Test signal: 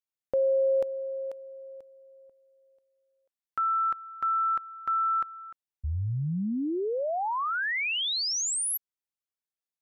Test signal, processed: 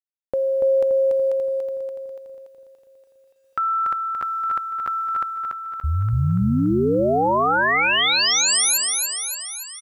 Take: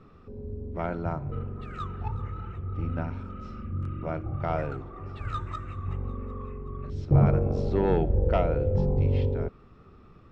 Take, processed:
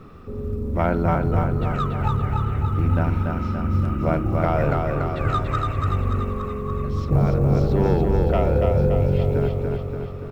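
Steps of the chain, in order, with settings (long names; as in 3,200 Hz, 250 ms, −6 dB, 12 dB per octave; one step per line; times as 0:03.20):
in parallel at +1.5 dB: compressor whose output falls as the input rises −29 dBFS, ratio −0.5
on the sum: floating-point word with a short mantissa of 6 bits
repeating echo 287 ms, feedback 59%, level −3.5 dB
bit-depth reduction 12 bits, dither none
level +1 dB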